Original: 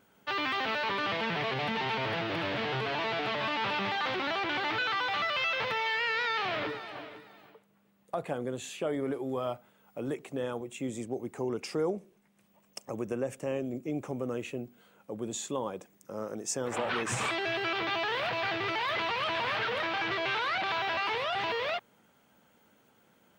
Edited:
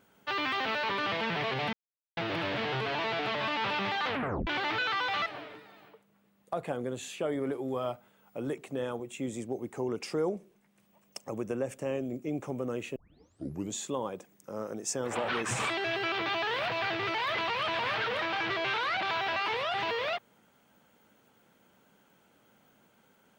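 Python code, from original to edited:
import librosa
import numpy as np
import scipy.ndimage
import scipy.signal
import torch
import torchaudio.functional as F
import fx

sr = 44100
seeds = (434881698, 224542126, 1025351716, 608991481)

y = fx.edit(x, sr, fx.silence(start_s=1.73, length_s=0.44),
    fx.tape_stop(start_s=4.07, length_s=0.4),
    fx.cut(start_s=5.26, length_s=1.61),
    fx.tape_start(start_s=14.57, length_s=0.79), tone=tone)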